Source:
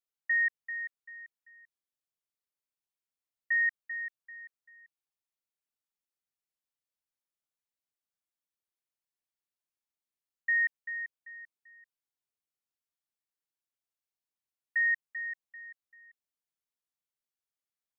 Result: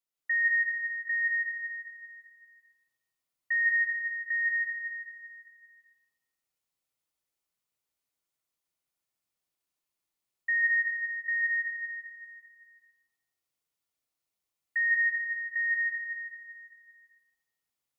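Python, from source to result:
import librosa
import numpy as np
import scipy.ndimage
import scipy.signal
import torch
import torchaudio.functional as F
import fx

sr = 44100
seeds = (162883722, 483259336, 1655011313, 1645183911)

p1 = fx.notch(x, sr, hz=1600.0, q=11.0)
p2 = p1 + fx.echo_single(p1, sr, ms=798, db=-3.5, dry=0)
y = fx.rev_plate(p2, sr, seeds[0], rt60_s=0.95, hf_ratio=0.95, predelay_ms=120, drr_db=-3.0)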